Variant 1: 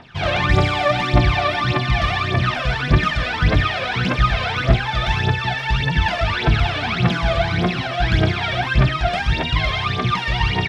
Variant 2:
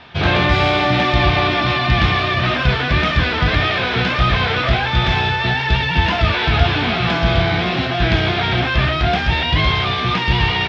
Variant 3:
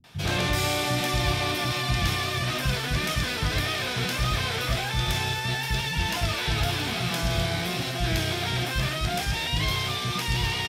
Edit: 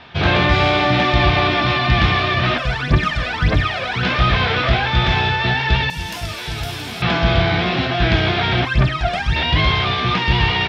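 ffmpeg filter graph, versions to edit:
-filter_complex "[0:a]asplit=2[a][b];[1:a]asplit=4[c][d][e][f];[c]atrim=end=2.582[g];[a]atrim=start=2.578:end=4.032[h];[d]atrim=start=4.028:end=5.902[i];[2:a]atrim=start=5.898:end=7.022[j];[e]atrim=start=7.018:end=8.652[k];[b]atrim=start=8.648:end=9.362[l];[f]atrim=start=9.358[m];[g][h]acrossfade=d=0.004:c1=hsin:c2=hsin[n];[n][i]acrossfade=d=0.004:c1=hsin:c2=hsin[o];[o][j]acrossfade=d=0.004:c1=hsin:c2=hsin[p];[p][k]acrossfade=d=0.004:c1=hsin:c2=hsin[q];[q][l]acrossfade=d=0.004:c1=hsin:c2=hsin[r];[r][m]acrossfade=d=0.004:c1=hsin:c2=hsin"

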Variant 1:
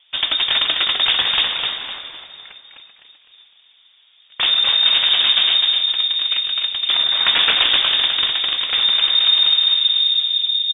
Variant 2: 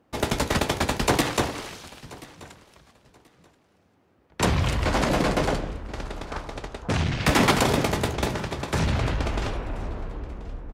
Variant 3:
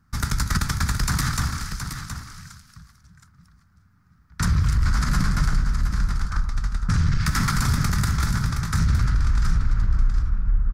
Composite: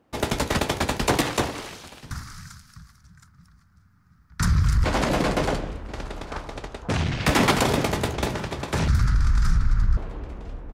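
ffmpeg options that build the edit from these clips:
-filter_complex "[2:a]asplit=2[a][b];[1:a]asplit=3[c][d][e];[c]atrim=end=2.112[f];[a]atrim=start=2.108:end=4.842[g];[d]atrim=start=4.838:end=8.882[h];[b]atrim=start=8.878:end=9.972[i];[e]atrim=start=9.968[j];[f][g]acrossfade=d=0.004:c1=hsin:c2=hsin[k];[k][h]acrossfade=d=0.004:c1=hsin:c2=hsin[l];[l][i]acrossfade=d=0.004:c1=hsin:c2=hsin[m];[m][j]acrossfade=d=0.004:c1=hsin:c2=hsin"

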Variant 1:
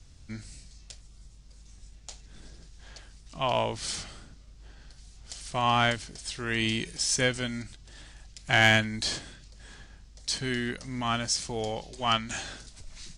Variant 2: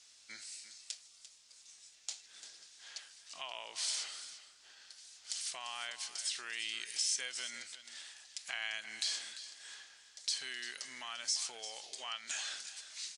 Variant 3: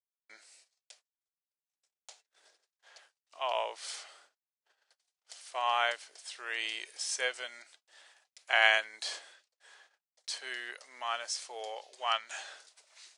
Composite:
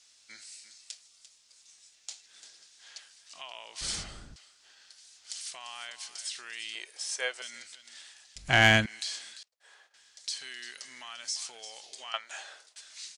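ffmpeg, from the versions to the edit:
-filter_complex "[0:a]asplit=2[a][b];[2:a]asplit=3[c][d][e];[1:a]asplit=6[f][g][h][i][j][k];[f]atrim=end=3.812[l];[a]atrim=start=3.808:end=4.362[m];[g]atrim=start=4.358:end=6.752[n];[c]atrim=start=6.748:end=7.422[o];[h]atrim=start=7.418:end=8.362[p];[b]atrim=start=8.358:end=8.862[q];[i]atrim=start=8.858:end=9.432[r];[d]atrim=start=9.428:end=9.942[s];[j]atrim=start=9.938:end=12.142[t];[e]atrim=start=12.138:end=12.762[u];[k]atrim=start=12.758[v];[l][m]acrossfade=d=0.004:c1=hsin:c2=hsin[w];[w][n]acrossfade=d=0.004:c1=hsin:c2=hsin[x];[x][o]acrossfade=d=0.004:c1=hsin:c2=hsin[y];[y][p]acrossfade=d=0.004:c1=hsin:c2=hsin[z];[z][q]acrossfade=d=0.004:c1=hsin:c2=hsin[aa];[aa][r]acrossfade=d=0.004:c1=hsin:c2=hsin[ab];[ab][s]acrossfade=d=0.004:c1=hsin:c2=hsin[ac];[ac][t]acrossfade=d=0.004:c1=hsin:c2=hsin[ad];[ad][u]acrossfade=d=0.004:c1=hsin:c2=hsin[ae];[ae][v]acrossfade=d=0.004:c1=hsin:c2=hsin"

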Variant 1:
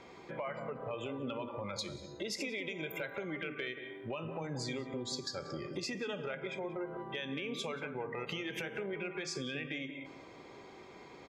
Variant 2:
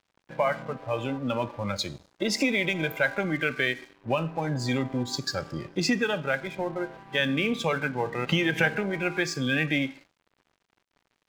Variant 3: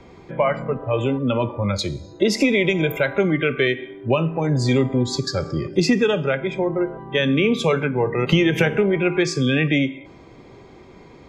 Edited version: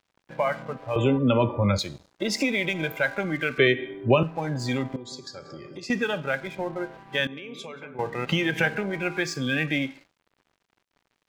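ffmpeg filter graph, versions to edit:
-filter_complex "[2:a]asplit=2[a][b];[0:a]asplit=2[c][d];[1:a]asplit=5[e][f][g][h][i];[e]atrim=end=0.962[j];[a]atrim=start=0.958:end=1.792[k];[f]atrim=start=1.788:end=3.582[l];[b]atrim=start=3.578:end=4.232[m];[g]atrim=start=4.228:end=4.962[n];[c]atrim=start=4.958:end=5.902[o];[h]atrim=start=5.898:end=7.272[p];[d]atrim=start=7.268:end=7.992[q];[i]atrim=start=7.988[r];[j][k]acrossfade=d=0.004:c1=hsin:c2=hsin[s];[s][l]acrossfade=d=0.004:c1=hsin:c2=hsin[t];[t][m]acrossfade=d=0.004:c1=hsin:c2=hsin[u];[u][n]acrossfade=d=0.004:c1=hsin:c2=hsin[v];[v][o]acrossfade=d=0.004:c1=hsin:c2=hsin[w];[w][p]acrossfade=d=0.004:c1=hsin:c2=hsin[x];[x][q]acrossfade=d=0.004:c1=hsin:c2=hsin[y];[y][r]acrossfade=d=0.004:c1=hsin:c2=hsin"

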